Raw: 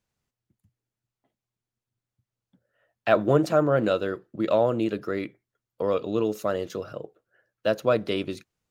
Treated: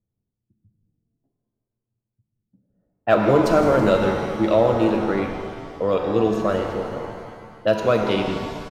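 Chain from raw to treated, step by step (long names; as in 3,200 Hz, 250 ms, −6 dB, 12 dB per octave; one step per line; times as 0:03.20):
echo with shifted repeats 162 ms, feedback 60%, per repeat −120 Hz, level −14 dB
in parallel at −6 dB: gain into a clipping stage and back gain 14.5 dB
on the sum: low-pass that shuts in the quiet parts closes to 330 Hz, open at −16.5 dBFS
reverb with rising layers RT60 1.9 s, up +7 semitones, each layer −8 dB, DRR 3.5 dB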